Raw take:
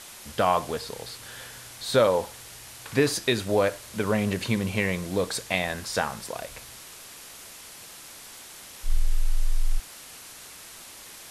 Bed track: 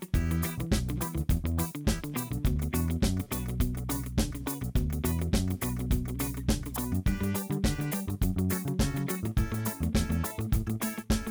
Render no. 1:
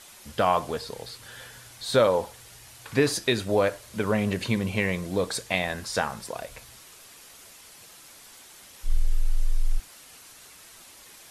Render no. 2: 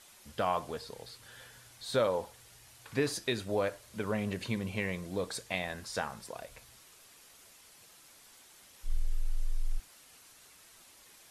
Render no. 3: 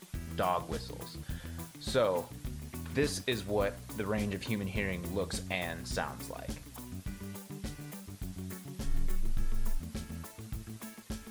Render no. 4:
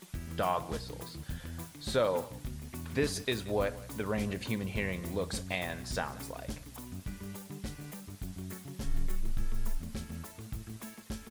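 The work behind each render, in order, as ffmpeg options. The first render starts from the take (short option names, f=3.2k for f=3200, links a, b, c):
-af "afftdn=nr=6:nf=-45"
-af "volume=-8.5dB"
-filter_complex "[1:a]volume=-13dB[a];[0:a][a]amix=inputs=2:normalize=0"
-af "aecho=1:1:180:0.106"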